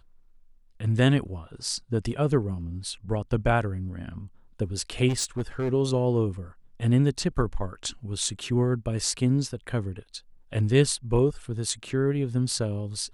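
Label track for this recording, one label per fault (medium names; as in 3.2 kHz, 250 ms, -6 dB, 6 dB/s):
5.080000	5.730000	clipped -22.5 dBFS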